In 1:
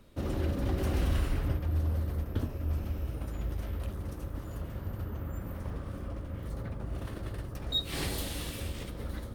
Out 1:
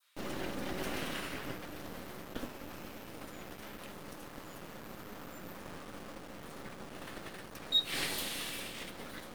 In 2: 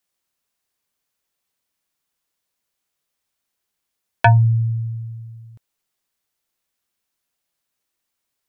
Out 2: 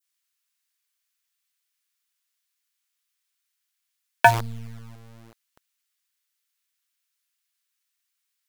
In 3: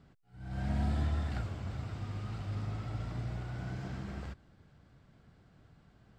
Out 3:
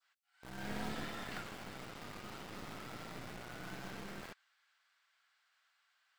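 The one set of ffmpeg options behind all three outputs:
-filter_complex "[0:a]highpass=f=170:w=0.5412,highpass=f=170:w=1.3066,adynamicequalizer=threshold=0.00251:dfrequency=2200:dqfactor=0.74:tfrequency=2200:tqfactor=0.74:attack=5:release=100:ratio=0.375:range=2:mode=boostabove:tftype=bell,acrossover=split=1200[a][b];[a]acrusher=bits=5:dc=4:mix=0:aa=0.000001[c];[c][b]amix=inputs=2:normalize=0"

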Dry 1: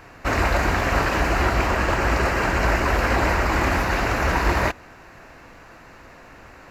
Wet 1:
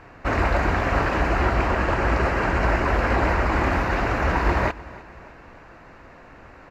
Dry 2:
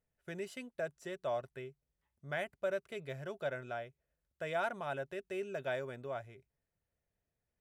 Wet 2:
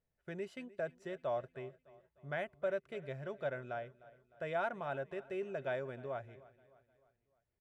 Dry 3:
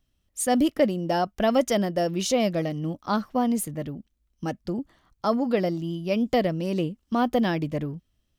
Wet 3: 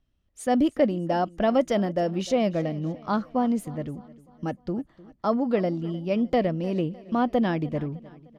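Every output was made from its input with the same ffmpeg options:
-filter_complex "[0:a]aemphasis=mode=reproduction:type=75kf,asplit=2[a][b];[b]aecho=0:1:304|608|912|1216:0.1|0.048|0.023|0.0111[c];[a][c]amix=inputs=2:normalize=0"

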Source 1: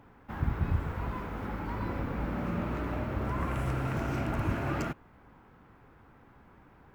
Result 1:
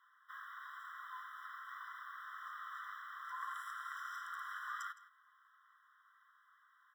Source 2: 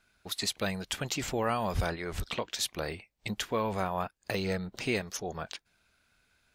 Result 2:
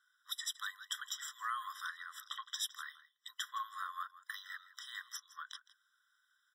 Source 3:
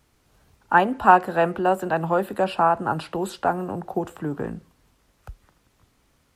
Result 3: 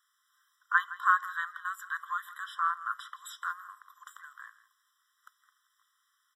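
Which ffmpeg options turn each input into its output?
-filter_complex "[0:a]asplit=2[a][b];[b]aecho=0:1:163:0.141[c];[a][c]amix=inputs=2:normalize=0,afftfilt=real='re*eq(mod(floor(b*sr/1024/1000),2),1)':imag='im*eq(mod(floor(b*sr/1024/1000),2),1)':win_size=1024:overlap=0.75,volume=-3.5dB"

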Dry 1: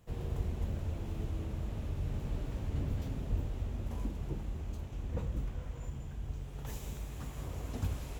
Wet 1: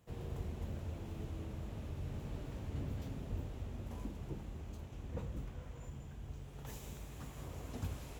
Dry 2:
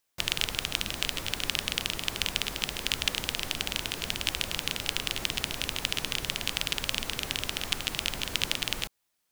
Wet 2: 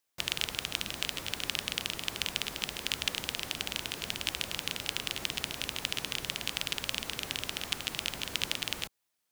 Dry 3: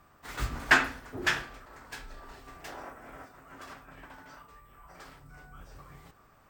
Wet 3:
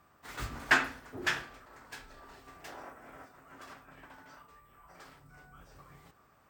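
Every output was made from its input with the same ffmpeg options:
-af "highpass=f=77:p=1,volume=-3.5dB"

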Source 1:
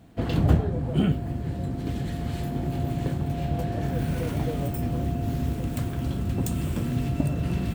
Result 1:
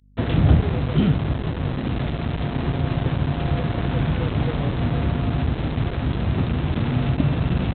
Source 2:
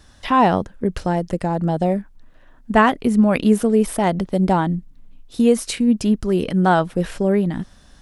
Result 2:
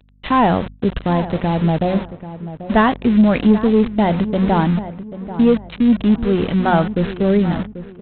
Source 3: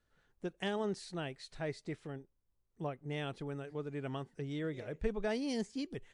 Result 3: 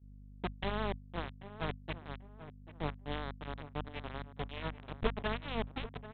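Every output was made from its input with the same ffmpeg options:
-filter_complex "[0:a]acontrast=72,equalizer=f=99:t=o:w=2.8:g=4.5,bandreject=f=183.6:t=h:w=4,bandreject=f=367.2:t=h:w=4,bandreject=f=550.8:t=h:w=4,bandreject=f=734.4:t=h:w=4,bandreject=f=918:t=h:w=4,bandreject=f=1.1016k:t=h:w=4,bandreject=f=1.2852k:t=h:w=4,bandreject=f=1.4688k:t=h:w=4,bandreject=f=1.6524k:t=h:w=4,bandreject=f=1.836k:t=h:w=4,bandreject=f=2.0196k:t=h:w=4,bandreject=f=2.2032k:t=h:w=4,bandreject=f=2.3868k:t=h:w=4,bandreject=f=2.5704k:t=h:w=4,acompressor=mode=upward:threshold=-18dB:ratio=2.5,aresample=8000,aeval=exprs='val(0)*gte(abs(val(0)),0.106)':c=same,aresample=44100,aeval=exprs='val(0)+0.0316*(sin(2*PI*50*n/s)+sin(2*PI*2*50*n/s)/2+sin(2*PI*3*50*n/s)/3+sin(2*PI*4*50*n/s)/4+sin(2*PI*5*50*n/s)/5)':c=same,agate=range=-33dB:threshold=-20dB:ratio=3:detection=peak,asplit=2[a][b];[b]adelay=788,lowpass=f=1.5k:p=1,volume=-13dB,asplit=2[c][d];[d]adelay=788,lowpass=f=1.5k:p=1,volume=0.34,asplit=2[e][f];[f]adelay=788,lowpass=f=1.5k:p=1,volume=0.34[g];[c][e][g]amix=inputs=3:normalize=0[h];[a][h]amix=inputs=2:normalize=0,volume=-5dB"

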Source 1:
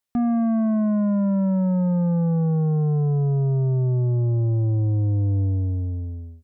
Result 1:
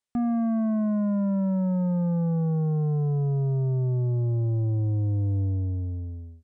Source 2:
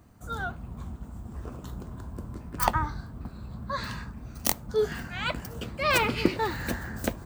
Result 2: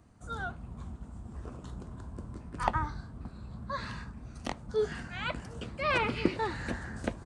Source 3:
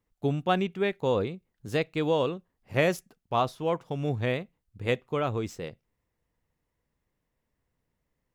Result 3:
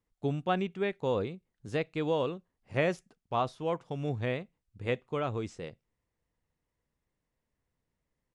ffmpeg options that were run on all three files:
-filter_complex "[0:a]aresample=22050,aresample=44100,acrossover=split=3500[a][b];[b]acompressor=threshold=-46dB:ratio=4:attack=1:release=60[c];[a][c]amix=inputs=2:normalize=0,volume=-4dB"

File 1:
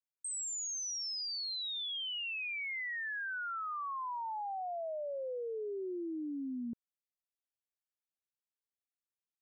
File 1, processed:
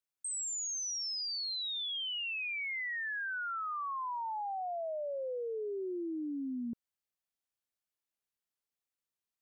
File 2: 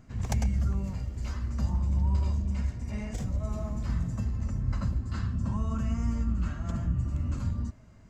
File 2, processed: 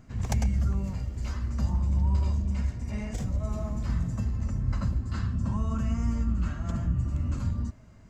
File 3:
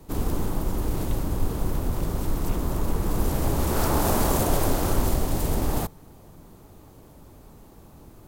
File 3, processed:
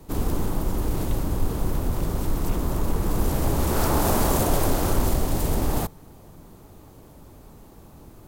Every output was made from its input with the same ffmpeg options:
-af "acontrast=65,volume=-5dB"

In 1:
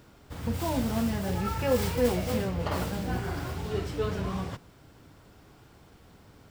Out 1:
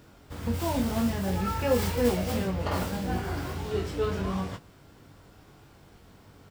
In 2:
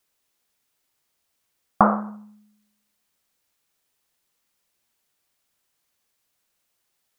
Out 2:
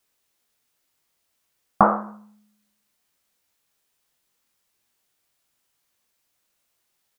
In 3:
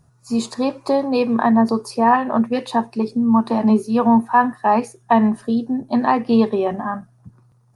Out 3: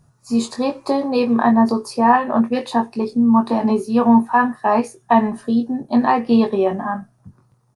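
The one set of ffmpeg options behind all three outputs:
-filter_complex "[0:a]asplit=2[a][b];[b]adelay=21,volume=-6dB[c];[a][c]amix=inputs=2:normalize=0"

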